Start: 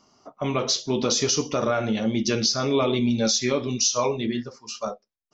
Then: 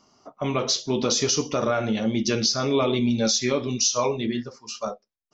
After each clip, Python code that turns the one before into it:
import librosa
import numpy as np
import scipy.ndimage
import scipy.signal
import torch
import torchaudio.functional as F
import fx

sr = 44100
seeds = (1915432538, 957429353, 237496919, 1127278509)

y = x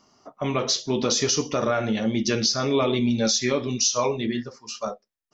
y = fx.peak_eq(x, sr, hz=1800.0, db=4.5, octaves=0.28)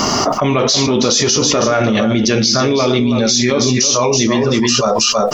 y = x + 10.0 ** (-10.0 / 20.0) * np.pad(x, (int(325 * sr / 1000.0), 0))[:len(x)]
y = fx.env_flatten(y, sr, amount_pct=100)
y = F.gain(torch.from_numpy(y), 5.0).numpy()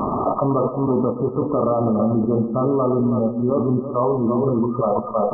y = np.sign(x) * np.maximum(np.abs(x) - 10.0 ** (-37.0 / 20.0), 0.0)
y = fx.brickwall_lowpass(y, sr, high_hz=1300.0)
y = fx.echo_feedback(y, sr, ms=123, feedback_pct=43, wet_db=-13)
y = F.gain(torch.from_numpy(y), -4.0).numpy()